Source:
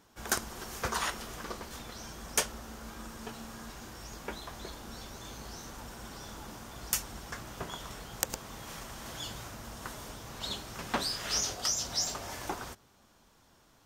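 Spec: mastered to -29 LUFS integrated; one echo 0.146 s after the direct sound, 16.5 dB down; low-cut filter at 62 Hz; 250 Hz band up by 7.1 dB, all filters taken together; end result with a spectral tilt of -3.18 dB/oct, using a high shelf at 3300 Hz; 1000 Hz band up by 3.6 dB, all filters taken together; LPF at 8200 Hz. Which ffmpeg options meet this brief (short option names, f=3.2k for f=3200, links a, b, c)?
-af "highpass=62,lowpass=8.2k,equalizer=f=250:t=o:g=8.5,equalizer=f=1k:t=o:g=4.5,highshelf=f=3.3k:g=-5,aecho=1:1:146:0.15,volume=8.5dB"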